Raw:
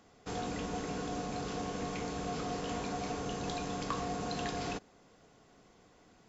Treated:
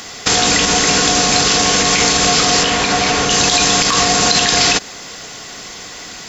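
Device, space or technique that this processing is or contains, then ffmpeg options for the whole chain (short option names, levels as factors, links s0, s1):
mastering chain: -filter_complex "[0:a]equalizer=f=1900:t=o:w=0.25:g=3,acompressor=threshold=0.0112:ratio=2.5,tiltshelf=f=1400:g=-9,asoftclip=type=hard:threshold=0.0562,alimiter=level_in=44.7:limit=0.891:release=50:level=0:latency=1,asettb=1/sr,asplit=3[s0][s1][s2];[s0]atrim=end=2.634[s3];[s1]atrim=start=2.63:end=3.3,asetpts=PTS-STARTPTS,afade=t=in:d=0.004:c=qsin,afade=t=out:st=0.666:d=0.004:c=qsin,acrossover=split=3700[s4][s5];[s5]acompressor=threshold=0.1:ratio=4:attack=1:release=60[s6];[s4][s6]amix=inputs=2:normalize=0[s7];[s2]atrim=start=3.296[s8];[s3][s7]acrossfade=d=0.004:c1=hsin:c2=qsin[s9];[s9][s8]acrossfade=d=0.004:c1=qsin:c2=hsin,equalizer=f=4900:t=o:w=0.77:g=2.5,volume=0.75"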